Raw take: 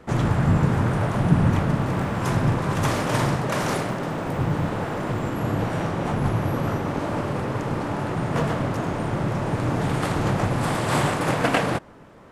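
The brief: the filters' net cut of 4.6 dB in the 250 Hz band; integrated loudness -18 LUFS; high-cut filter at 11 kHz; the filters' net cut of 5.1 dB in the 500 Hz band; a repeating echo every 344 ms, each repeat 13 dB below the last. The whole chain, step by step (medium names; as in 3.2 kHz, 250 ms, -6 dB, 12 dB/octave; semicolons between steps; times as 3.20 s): low-pass 11 kHz; peaking EQ 250 Hz -6 dB; peaking EQ 500 Hz -5 dB; feedback delay 344 ms, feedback 22%, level -13 dB; trim +8 dB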